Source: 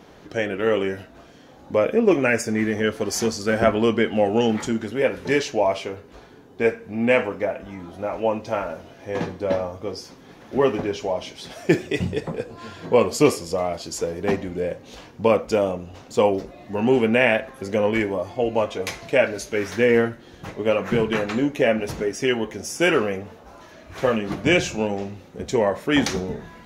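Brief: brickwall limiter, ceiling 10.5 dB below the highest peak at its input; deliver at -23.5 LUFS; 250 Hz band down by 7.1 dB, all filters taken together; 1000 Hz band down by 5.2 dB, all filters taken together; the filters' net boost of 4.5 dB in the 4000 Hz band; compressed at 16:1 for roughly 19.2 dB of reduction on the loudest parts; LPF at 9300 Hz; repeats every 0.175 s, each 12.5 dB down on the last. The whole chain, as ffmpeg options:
-af "lowpass=9.3k,equalizer=f=250:t=o:g=-9,equalizer=f=1k:t=o:g=-7,equalizer=f=4k:t=o:g=7.5,acompressor=threshold=-34dB:ratio=16,alimiter=level_in=7dB:limit=-24dB:level=0:latency=1,volume=-7dB,aecho=1:1:175|350|525:0.237|0.0569|0.0137,volume=18dB"

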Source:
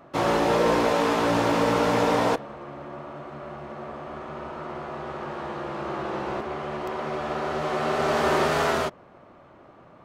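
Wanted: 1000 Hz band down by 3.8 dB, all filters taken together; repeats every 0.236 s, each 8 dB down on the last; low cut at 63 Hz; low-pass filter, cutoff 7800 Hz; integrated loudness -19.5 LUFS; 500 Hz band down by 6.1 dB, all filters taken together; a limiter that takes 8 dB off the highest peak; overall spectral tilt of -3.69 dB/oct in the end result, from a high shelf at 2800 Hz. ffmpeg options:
-af "highpass=63,lowpass=7.8k,equalizer=f=500:t=o:g=-7,equalizer=f=1k:t=o:g=-4,highshelf=f=2.8k:g=9,alimiter=limit=-20.5dB:level=0:latency=1,aecho=1:1:236|472|708|944|1180:0.398|0.159|0.0637|0.0255|0.0102,volume=11.5dB"

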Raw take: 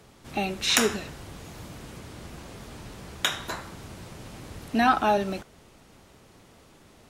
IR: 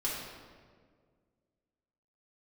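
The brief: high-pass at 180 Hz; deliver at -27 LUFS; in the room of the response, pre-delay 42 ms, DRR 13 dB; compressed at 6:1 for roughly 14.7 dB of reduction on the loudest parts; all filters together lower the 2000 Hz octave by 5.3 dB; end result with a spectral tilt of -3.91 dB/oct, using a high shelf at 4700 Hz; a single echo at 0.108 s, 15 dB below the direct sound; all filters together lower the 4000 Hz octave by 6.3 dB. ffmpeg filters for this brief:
-filter_complex "[0:a]highpass=180,equalizer=f=2k:t=o:g=-6,equalizer=f=4k:t=o:g=-7.5,highshelf=f=4.7k:g=3.5,acompressor=threshold=-36dB:ratio=6,aecho=1:1:108:0.178,asplit=2[a][b];[1:a]atrim=start_sample=2205,adelay=42[c];[b][c]afir=irnorm=-1:irlink=0,volume=-18dB[d];[a][d]amix=inputs=2:normalize=0,volume=14.5dB"

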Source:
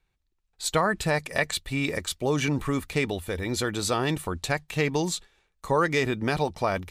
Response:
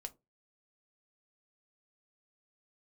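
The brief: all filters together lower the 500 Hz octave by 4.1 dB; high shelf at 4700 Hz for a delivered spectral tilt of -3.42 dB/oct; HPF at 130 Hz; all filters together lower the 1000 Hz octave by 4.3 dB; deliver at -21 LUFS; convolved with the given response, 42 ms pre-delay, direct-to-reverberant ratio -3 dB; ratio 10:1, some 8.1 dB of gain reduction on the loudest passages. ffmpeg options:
-filter_complex "[0:a]highpass=130,equalizer=f=500:t=o:g=-4,equalizer=f=1k:t=o:g=-4.5,highshelf=f=4.7k:g=3.5,acompressor=threshold=-30dB:ratio=10,asplit=2[a][b];[1:a]atrim=start_sample=2205,adelay=42[c];[b][c]afir=irnorm=-1:irlink=0,volume=7dB[d];[a][d]amix=inputs=2:normalize=0,volume=9dB"

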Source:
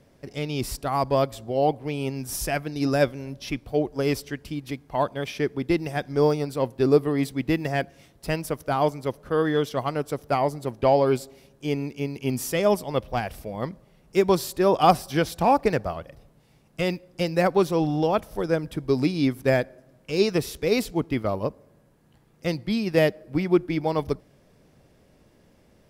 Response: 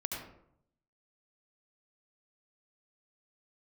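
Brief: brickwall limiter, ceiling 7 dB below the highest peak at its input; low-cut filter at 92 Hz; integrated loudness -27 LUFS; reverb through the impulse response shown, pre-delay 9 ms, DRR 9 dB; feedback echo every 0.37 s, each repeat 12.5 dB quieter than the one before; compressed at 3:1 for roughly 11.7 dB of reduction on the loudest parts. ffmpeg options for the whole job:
-filter_complex "[0:a]highpass=92,acompressor=threshold=-29dB:ratio=3,alimiter=limit=-24dB:level=0:latency=1,aecho=1:1:370|740|1110:0.237|0.0569|0.0137,asplit=2[a][b];[1:a]atrim=start_sample=2205,adelay=9[c];[b][c]afir=irnorm=-1:irlink=0,volume=-11dB[d];[a][d]amix=inputs=2:normalize=0,volume=7.5dB"

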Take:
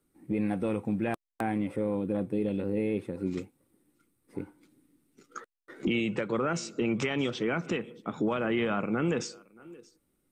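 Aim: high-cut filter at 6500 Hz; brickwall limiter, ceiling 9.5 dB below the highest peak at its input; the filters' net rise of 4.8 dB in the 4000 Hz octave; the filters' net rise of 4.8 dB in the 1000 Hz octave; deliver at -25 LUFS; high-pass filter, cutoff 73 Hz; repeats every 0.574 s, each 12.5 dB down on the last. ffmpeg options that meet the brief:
-af "highpass=73,lowpass=6.5k,equalizer=f=1k:t=o:g=6.5,equalizer=f=4k:t=o:g=7,alimiter=limit=-23dB:level=0:latency=1,aecho=1:1:574|1148|1722:0.237|0.0569|0.0137,volume=9dB"

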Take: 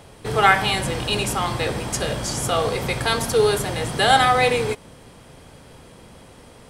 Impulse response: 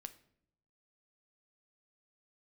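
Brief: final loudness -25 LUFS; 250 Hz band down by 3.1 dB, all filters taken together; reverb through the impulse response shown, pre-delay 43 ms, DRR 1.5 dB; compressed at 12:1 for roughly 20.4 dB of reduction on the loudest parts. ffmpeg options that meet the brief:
-filter_complex "[0:a]equalizer=f=250:t=o:g=-4.5,acompressor=threshold=-31dB:ratio=12,asplit=2[a][b];[1:a]atrim=start_sample=2205,adelay=43[c];[b][c]afir=irnorm=-1:irlink=0,volume=4dB[d];[a][d]amix=inputs=2:normalize=0,volume=7dB"

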